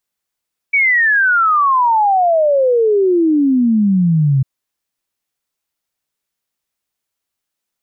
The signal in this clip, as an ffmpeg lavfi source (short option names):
-f lavfi -i "aevalsrc='0.335*clip(min(t,3.7-t)/0.01,0,1)*sin(2*PI*2300*3.7/log(130/2300)*(exp(log(130/2300)*t/3.7)-1))':d=3.7:s=44100"